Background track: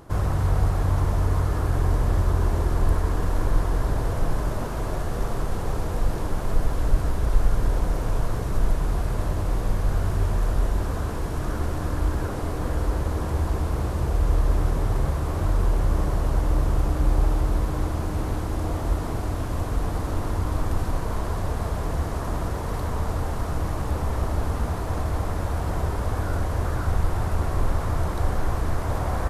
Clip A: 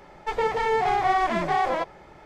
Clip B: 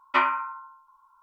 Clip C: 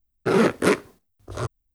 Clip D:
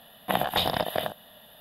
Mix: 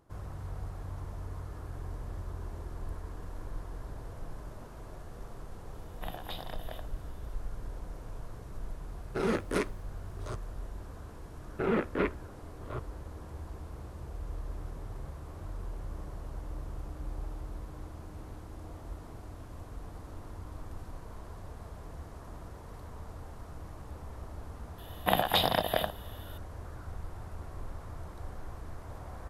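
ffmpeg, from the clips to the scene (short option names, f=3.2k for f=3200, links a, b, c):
-filter_complex "[4:a]asplit=2[a][b];[3:a]asplit=2[c][d];[0:a]volume=-18.5dB[e];[d]lowpass=f=3k:w=0.5412,lowpass=f=3k:w=1.3066[f];[a]atrim=end=1.6,asetpts=PTS-STARTPTS,volume=-17dB,afade=t=in:d=0.004:c=hsin,afade=t=out:st=1.596:d=0.004:c=hsin,adelay=252693S[g];[c]atrim=end=1.74,asetpts=PTS-STARTPTS,volume=-11.5dB,afade=t=in:d=0.004:c=hsin,afade=t=out:st=1.736:d=0.004:c=hsin,adelay=8890[h];[f]atrim=end=1.74,asetpts=PTS-STARTPTS,volume=-10.5dB,afade=t=in:d=0.004:c=hsin,afade=t=out:st=1.736:d=0.004:c=hsin,adelay=11330[i];[b]atrim=end=1.6,asetpts=PTS-STARTPTS,volume=-1dB,afade=t=in:d=0.004:c=hsin,afade=t=out:st=1.596:d=0.004:c=hsin,adelay=24780[j];[e][g][h][i][j]amix=inputs=5:normalize=0"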